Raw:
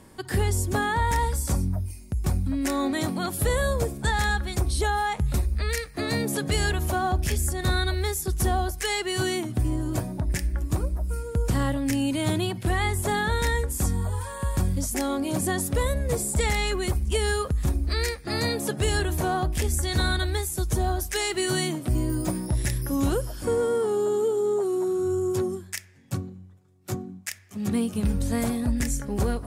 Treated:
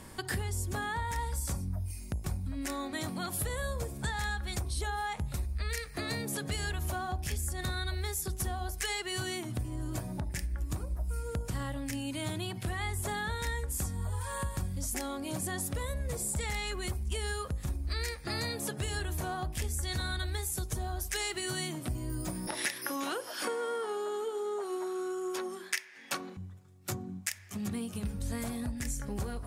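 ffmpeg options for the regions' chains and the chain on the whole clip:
ffmpeg -i in.wav -filter_complex "[0:a]asettb=1/sr,asplit=3[link_01][link_02][link_03];[link_01]atrim=end=22.474[link_04];[link_02]atrim=start=22.47:end=26.37,asetpts=PTS-STARTPTS,afade=type=in:duration=0.004:curve=qsin,afade=type=out:start_time=3.896:duration=0.004:curve=qsin,highpass=frequency=250:width=0.5412,highpass=frequency=250:width=1.3066,equalizer=frequency=2000:width=0.31:gain=12,bandreject=frequency=7500:width=7.7[link_05];[link_03]atrim=start=26.366[link_06];[link_04][link_05]acrossfade=duration=0.004:curve1=hsin:curve2=qsin[link_07];[link_07][link_06]acrossfade=duration=0.004:curve1=qsin:curve2=hsin,acompressor=threshold=-35dB:ratio=6,equalizer=frequency=340:width_type=o:width=2.1:gain=-5,bandreject=frequency=53.96:width_type=h:width=4,bandreject=frequency=107.92:width_type=h:width=4,bandreject=frequency=161.88:width_type=h:width=4,bandreject=frequency=215.84:width_type=h:width=4,bandreject=frequency=269.8:width_type=h:width=4,bandreject=frequency=323.76:width_type=h:width=4,bandreject=frequency=377.72:width_type=h:width=4,bandreject=frequency=431.68:width_type=h:width=4,bandreject=frequency=485.64:width_type=h:width=4,bandreject=frequency=539.6:width_type=h:width=4,bandreject=frequency=593.56:width_type=h:width=4,bandreject=frequency=647.52:width_type=h:width=4,bandreject=frequency=701.48:width_type=h:width=4,bandreject=frequency=755.44:width_type=h:width=4,bandreject=frequency=809.4:width_type=h:width=4,bandreject=frequency=863.36:width_type=h:width=4,bandreject=frequency=917.32:width_type=h:width=4,bandreject=frequency=971.28:width_type=h:width=4,bandreject=frequency=1025.24:width_type=h:width=4,bandreject=frequency=1079.2:width_type=h:width=4,volume=4.5dB" out.wav

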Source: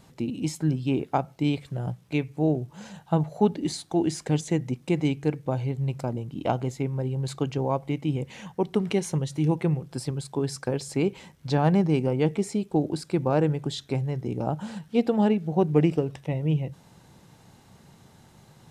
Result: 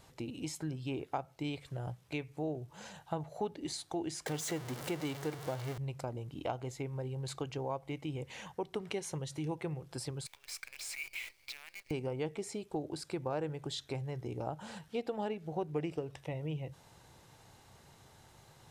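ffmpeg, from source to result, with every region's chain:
ffmpeg -i in.wav -filter_complex "[0:a]asettb=1/sr,asplit=3[link_01][link_02][link_03];[link_01]atrim=end=4.264[link_04];[link_02]atrim=start=4.26:end=5.78,asetpts=PTS-STARTPTS,afade=type=in:duration=0.004:curve=qsin,afade=type=out:start_time=1.516:duration=0.004:curve=qsin,aeval=exprs='val(0)+0.5*0.0398*sgn(val(0))':channel_layout=same,highpass=120,bandreject=frequency=2500:width=15[link_05];[link_03]atrim=start=5.776[link_06];[link_04][link_05]acrossfade=duration=0.004:curve1=hsin:curve2=qsin[link_07];[link_07][link_06]acrossfade=duration=0.004:curve1=qsin:curve2=hsin,asettb=1/sr,asplit=3[link_08][link_09][link_10];[link_08]atrim=end=10.264[link_11];[link_09]atrim=start=10.26:end=11.91,asetpts=PTS-STARTPTS,afade=type=in:duration=0.004:curve=qsin,afade=type=out:start_time=1.646:duration=0.004:curve=qsin,acompressor=threshold=-35dB:ratio=6:attack=3.2:release=140:knee=1:detection=peak,highpass=frequency=2300:width_type=q:width=10,acrusher=bits=8:dc=4:mix=0:aa=0.000001[link_12];[link_10]atrim=start=11.906[link_13];[link_11][link_12]acrossfade=duration=0.004:curve1=hsin:curve2=qsin[link_14];[link_14][link_13]acrossfade=duration=0.004:curve1=qsin:curve2=hsin,equalizer=frequency=200:width=1.2:gain=-11,acompressor=threshold=-36dB:ratio=2,volume=-2.5dB" out.wav

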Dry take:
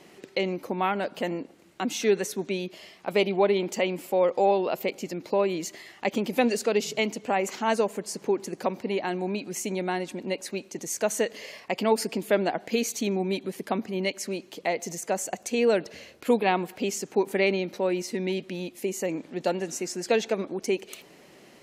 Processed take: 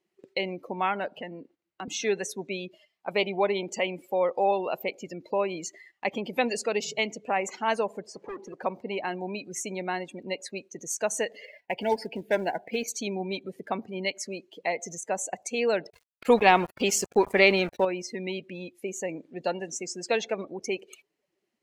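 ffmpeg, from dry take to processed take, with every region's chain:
ffmpeg -i in.wav -filter_complex "[0:a]asettb=1/sr,asplit=3[link_01][link_02][link_03];[link_01]atrim=end=1.184[link_04];[link_02]atrim=start=1.18:end=1.88,asetpts=PTS-STARTPTS,afade=type=in:duration=0.004:curve=qsin,afade=type=out:start_time=0.696:duration=0.004:curve=qsin,acrossover=split=320|880[link_05][link_06][link_07];[link_05]acompressor=threshold=-36dB:ratio=4[link_08];[link_06]acompressor=threshold=-40dB:ratio=4[link_09];[link_07]acompressor=threshold=-39dB:ratio=4[link_10];[link_08][link_09][link_10]amix=inputs=3:normalize=0,lowpass=5300[link_11];[link_03]atrim=start=1.876[link_12];[link_04][link_11]acrossfade=duration=0.004:curve1=hsin:curve2=qsin[link_13];[link_13][link_12]acrossfade=duration=0.004:curve1=qsin:curve2=hsin,asettb=1/sr,asplit=3[link_14][link_15][link_16];[link_14]atrim=end=8.064[link_17];[link_15]atrim=start=8.06:end=8.63,asetpts=PTS-STARTPTS,afade=type=in:duration=0.004:curve=qsin,afade=type=out:start_time=0.566:duration=0.004:curve=qsin,highpass=49,asplit=2[link_18][link_19];[link_19]highpass=frequency=720:poles=1,volume=13dB,asoftclip=type=tanh:threshold=-14dB[link_20];[link_18][link_20]amix=inputs=2:normalize=0,lowpass=frequency=1300:poles=1,volume=-6dB,volume=30.5dB,asoftclip=hard,volume=-30.5dB[link_21];[link_16]atrim=start=8.626[link_22];[link_17][link_21]acrossfade=duration=0.004:curve1=hsin:curve2=qsin[link_23];[link_23][link_22]acrossfade=duration=0.004:curve1=qsin:curve2=hsin,asettb=1/sr,asplit=3[link_24][link_25][link_26];[link_24]atrim=end=11.454[link_27];[link_25]atrim=start=11.45:end=12.88,asetpts=PTS-STARTPTS,afade=type=in:duration=0.004:curve=qsin,afade=type=out:start_time=1.426:duration=0.004:curve=qsin,equalizer=frequency=7800:width_type=o:width=1.2:gain=-12.5,acrusher=bits=4:mode=log:mix=0:aa=0.000001,asuperstop=centerf=1200:order=20:qfactor=3.4[link_28];[link_26]atrim=start=12.876[link_29];[link_27][link_28]acrossfade=duration=0.004:curve1=hsin:curve2=qsin[link_30];[link_30][link_29]acrossfade=duration=0.004:curve1=qsin:curve2=hsin,asettb=1/sr,asplit=3[link_31][link_32][link_33];[link_31]atrim=end=15.904[link_34];[link_32]atrim=start=15.9:end=17.85,asetpts=PTS-STARTPTS,afade=type=in:duration=0.004:curve=qsin,afade=type=out:start_time=1.946:duration=0.004:curve=qsin,acontrast=80,aeval=exprs='val(0)*gte(abs(val(0)),0.0316)':channel_layout=same[link_35];[link_33]atrim=start=17.846[link_36];[link_34][link_35]acrossfade=duration=0.004:curve1=hsin:curve2=qsin[link_37];[link_37][link_36]acrossfade=duration=0.004:curve1=qsin:curve2=hsin,afftdn=noise_reduction=21:noise_floor=-38,agate=range=-9dB:threshold=-52dB:ratio=16:detection=peak,equalizer=frequency=260:width=0.69:gain=-8,volume=1dB" out.wav

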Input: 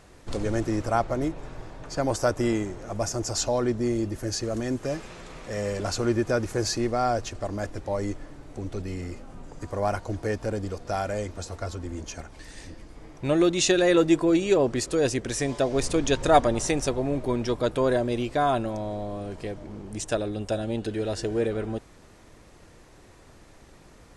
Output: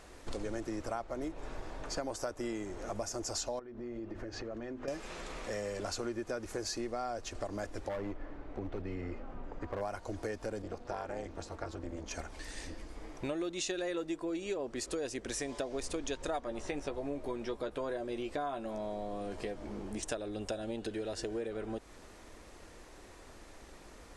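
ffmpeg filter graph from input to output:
ffmpeg -i in.wav -filter_complex "[0:a]asettb=1/sr,asplit=3[link_01][link_02][link_03];[link_01]atrim=end=3.594[link_04];[link_02]atrim=start=3.59:end=4.88,asetpts=PTS-STARTPTS,afade=type=in:duration=0.004:curve=qsin,afade=type=out:start_time=1.286:duration=0.004:curve=qsin,lowpass=2400,bandreject=frequency=50:width_type=h:width=6,bandreject=frequency=100:width_type=h:width=6,bandreject=frequency=150:width_type=h:width=6,bandreject=frequency=200:width_type=h:width=6,bandreject=frequency=250:width_type=h:width=6,bandreject=frequency=300:width_type=h:width=6,bandreject=frequency=350:width_type=h:width=6,acompressor=threshold=-35dB:ratio=16:attack=3.2:release=140:knee=1:detection=peak[link_05];[link_03]atrim=start=4.876[link_06];[link_04][link_05]acrossfade=duration=0.004:curve1=hsin:curve2=qsin[link_07];[link_07][link_06]acrossfade=duration=0.004:curve1=qsin:curve2=hsin,asettb=1/sr,asplit=3[link_08][link_09][link_10];[link_08]atrim=end=7.894[link_11];[link_09]atrim=start=7.89:end=9.81,asetpts=PTS-STARTPTS,afade=type=in:duration=0.004:curve=qsin,afade=type=out:start_time=1.916:duration=0.004:curve=qsin,lowpass=2300,asoftclip=type=hard:threshold=-27dB[link_12];[link_10]atrim=start=9.806[link_13];[link_11][link_12]acrossfade=duration=0.004:curve1=hsin:curve2=qsin[link_14];[link_14][link_13]acrossfade=duration=0.004:curve1=qsin:curve2=hsin,asettb=1/sr,asplit=3[link_15][link_16][link_17];[link_15]atrim=end=10.624[link_18];[link_16]atrim=start=10.62:end=12.11,asetpts=PTS-STARTPTS,afade=type=in:duration=0.004:curve=qsin,afade=type=out:start_time=1.486:duration=0.004:curve=qsin,lowpass=frequency=3000:poles=1,tremolo=f=240:d=0.889[link_19];[link_17]atrim=start=12.106[link_20];[link_18][link_19]acrossfade=duration=0.004:curve1=hsin:curve2=qsin[link_21];[link_21][link_20]acrossfade=duration=0.004:curve1=qsin:curve2=hsin,asettb=1/sr,asplit=3[link_22][link_23][link_24];[link_22]atrim=end=16.414[link_25];[link_23]atrim=start=16.41:end=20.03,asetpts=PTS-STARTPTS,afade=type=in:duration=0.004:curve=qsin,afade=type=out:start_time=3.616:duration=0.004:curve=qsin,acrossover=split=3500[link_26][link_27];[link_27]acompressor=threshold=-47dB:ratio=4:attack=1:release=60[link_28];[link_26][link_28]amix=inputs=2:normalize=0,asplit=2[link_29][link_30];[link_30]adelay=14,volume=-7.5dB[link_31];[link_29][link_31]amix=inputs=2:normalize=0,atrim=end_sample=159642[link_32];[link_24]atrim=start=20.026[link_33];[link_25][link_32]acrossfade=duration=0.004:curve1=hsin:curve2=qsin[link_34];[link_34][link_33]acrossfade=duration=0.004:curve1=qsin:curve2=hsin,equalizer=frequency=130:width=1.4:gain=-11,acompressor=threshold=-35dB:ratio=6" out.wav

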